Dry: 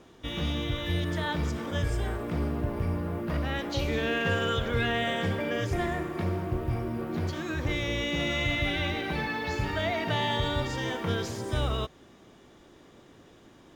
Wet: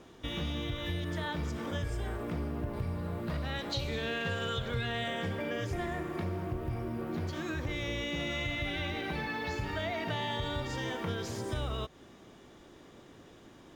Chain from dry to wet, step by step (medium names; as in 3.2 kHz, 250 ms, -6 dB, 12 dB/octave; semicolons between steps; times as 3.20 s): 2.73–5.08 s: graphic EQ with 31 bands 125 Hz +7 dB, 315 Hz -6 dB, 4 kHz +9 dB, 8 kHz +5 dB; compression 2.5:1, threshold -34 dBFS, peak gain reduction 9 dB